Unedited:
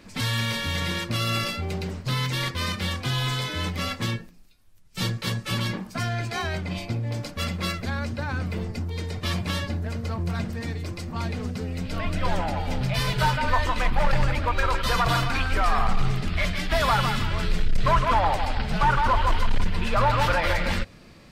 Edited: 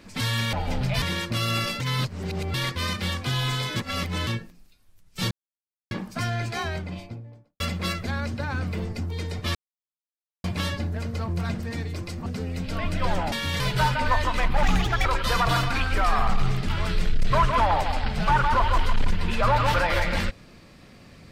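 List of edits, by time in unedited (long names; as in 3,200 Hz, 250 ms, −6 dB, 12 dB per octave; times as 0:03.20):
0:00.53–0:00.81: swap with 0:12.53–0:13.02
0:01.59–0:02.33: reverse
0:03.55–0:04.06: reverse
0:05.10–0:05.70: silence
0:06.26–0:07.39: fade out and dull
0:09.34: splice in silence 0.89 s
0:11.16–0:11.47: remove
0:14.05–0:14.65: play speed 141%
0:16.29–0:17.23: remove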